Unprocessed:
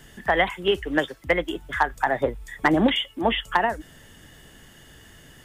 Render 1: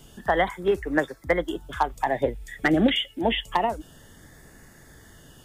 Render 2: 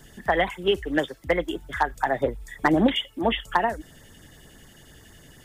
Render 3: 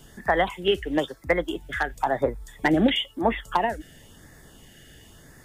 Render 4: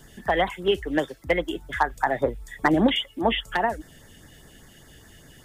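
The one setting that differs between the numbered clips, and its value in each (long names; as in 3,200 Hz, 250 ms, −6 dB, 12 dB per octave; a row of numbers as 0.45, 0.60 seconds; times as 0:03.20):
auto-filter notch, speed: 0.27, 11, 0.98, 5 Hertz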